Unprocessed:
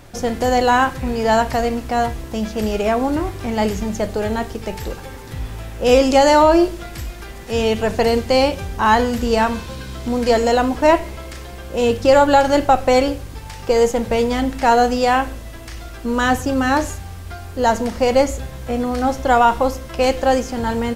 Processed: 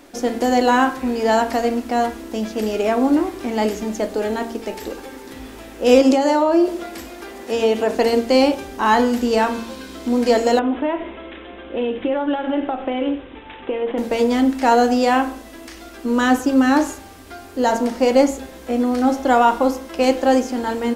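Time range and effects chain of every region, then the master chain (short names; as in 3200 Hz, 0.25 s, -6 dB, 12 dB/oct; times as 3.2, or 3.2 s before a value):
6.01–7.95 HPF 52 Hz + bell 660 Hz +4.5 dB 1.9 oct + compressor, threshold -13 dBFS
10.59–13.98 careless resampling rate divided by 6×, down none, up filtered + compressor 5:1, threshold -19 dBFS
whole clip: resonant low shelf 190 Hz -11.5 dB, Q 3; de-hum 45.86 Hz, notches 37; gain -1.5 dB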